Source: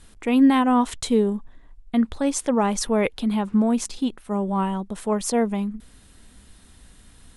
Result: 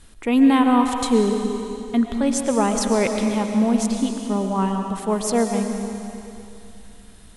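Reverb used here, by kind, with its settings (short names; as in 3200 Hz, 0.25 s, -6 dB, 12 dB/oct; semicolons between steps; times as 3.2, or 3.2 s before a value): digital reverb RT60 2.8 s, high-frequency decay 1×, pre-delay 75 ms, DRR 4 dB; gain +1 dB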